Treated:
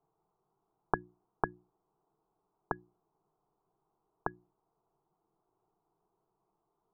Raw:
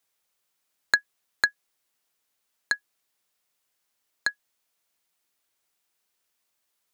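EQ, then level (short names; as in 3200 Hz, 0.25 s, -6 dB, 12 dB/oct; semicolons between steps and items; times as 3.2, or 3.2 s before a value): Gaussian blur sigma 9.7 samples; notches 60/120/180/240/300/360 Hz; fixed phaser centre 370 Hz, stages 8; +17.0 dB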